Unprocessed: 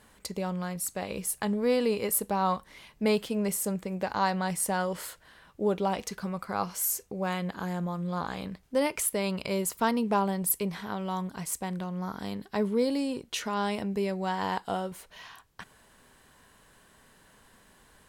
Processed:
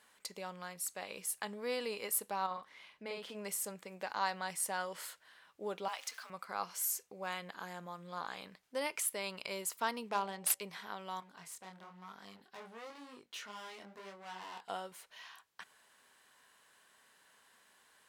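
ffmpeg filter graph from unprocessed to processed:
-filter_complex "[0:a]asettb=1/sr,asplit=3[a][b][c];[a]atrim=end=2.464[d];[b]atrim=start=2.46:end=3.35,asetpts=PTS-STARTPTS,afade=t=in:d=0.004:c=qsin,afade=t=out:st=0.886:d=0.004:c=qsin,lowpass=f=3.1k:p=1,asplit=2[e][f];[f]adelay=49,volume=-4dB[g];[e][g]amix=inputs=2:normalize=0,atrim=end_sample=39249,acompressor=threshold=-31dB:ratio=2:attack=3.2:release=140:knee=1:detection=peak[h];[c]atrim=start=3.346[i];[d][h]acrossfade=d=0.004:c1=hsin:c2=qsin[j];[j][i]acrossfade=d=0.004:c1=qsin:c2=hsin,asettb=1/sr,asplit=3[k][l][m];[k]atrim=end=5.884[n];[l]atrim=start=5.88:end=6.3,asetpts=PTS-STARTPTS,afade=t=in:d=0.004:c=qsin,afade=t=out:st=0.416:d=0.004:c=qsin,aeval=exprs='val(0)+0.5*0.00596*sgn(val(0))':c=same,highpass=880,afreqshift=51[o];[m]atrim=start=6.296[p];[n][o]acrossfade=d=0.004:c1=hsin:c2=qsin[q];[q][p]acrossfade=d=0.004:c1=qsin:c2=hsin,asettb=1/sr,asplit=3[r][s][t];[r]atrim=end=10.094[u];[s]atrim=start=10.09:end=10.62,asetpts=PTS-STARTPTS,afade=t=in:d=0.004:c=qsin,afade=t=out:st=0.526:d=0.004:c=qsin,highshelf=f=4.9k:g=10,bandreject=f=70.95:t=h:w=4,bandreject=f=141.9:t=h:w=4,bandreject=f=212.85:t=h:w=4,bandreject=f=283.8:t=h:w=4,bandreject=f=354.75:t=h:w=4,bandreject=f=425.7:t=h:w=4,bandreject=f=496.65:t=h:w=4,bandreject=f=567.6:t=h:w=4,bandreject=f=638.55:t=h:w=4,bandreject=f=709.5:t=h:w=4,bandreject=f=780.45:t=h:w=4,bandreject=f=851.4:t=h:w=4,adynamicsmooth=sensitivity=5:basefreq=3.4k[v];[t]atrim=start=10.616[w];[u][v]acrossfade=d=0.004:c1=hsin:c2=qsin[x];[x][w]acrossfade=d=0.004:c1=qsin:c2=hsin,asettb=1/sr,asplit=3[y][z][aa];[y]atrim=end=11.204[ab];[z]atrim=start=11.2:end=14.69,asetpts=PTS-STARTPTS,afade=t=in:d=0.004:c=qsin,afade=t=out:st=3.486:d=0.004:c=qsin,highshelf=f=5k:g=-6,asoftclip=type=hard:threshold=-33dB,flanger=delay=19.5:depth=7.4:speed=1[ac];[aa]atrim=start=14.686[ad];[ab][ac]acrossfade=d=0.004:c1=hsin:c2=qsin[ae];[ae][ad]acrossfade=d=0.004:c1=qsin:c2=hsin,highpass=f=1.3k:p=1,highshelf=f=6.6k:g=-4.5,volume=-3dB"

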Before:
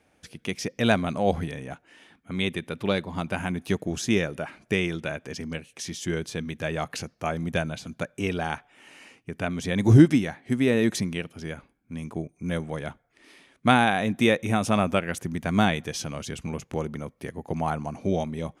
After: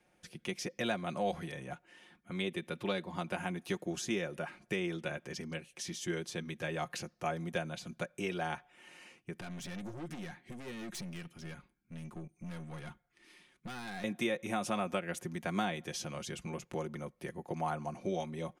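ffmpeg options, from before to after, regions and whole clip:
-filter_complex "[0:a]asettb=1/sr,asplit=3[a][b][c];[a]atrim=end=9.404[d];[b]atrim=start=9.4:end=14.04,asetpts=PTS-STARTPTS,afade=t=in:d=0.004:c=qsin,afade=t=out:st=4.636:d=0.004:c=qsin,equalizer=f=580:t=o:w=1.1:g=-7.5,acompressor=threshold=-26dB:ratio=3:attack=3.2:release=140:knee=1:detection=peak,aeval=exprs='(tanh(44.7*val(0)+0.3)-tanh(0.3))/44.7':c=same[e];[c]atrim=start=14.036[f];[d][e]acrossfade=d=0.004:c1=hsin:c2=qsin[g];[g][f]acrossfade=d=0.004:c1=qsin:c2=hsin,acrossover=split=260|920[h][i][j];[h]acompressor=threshold=-39dB:ratio=4[k];[i]acompressor=threshold=-28dB:ratio=4[l];[j]acompressor=threshold=-31dB:ratio=4[m];[k][l][m]amix=inputs=3:normalize=0,aecho=1:1:5.6:0.58,volume=-7dB"

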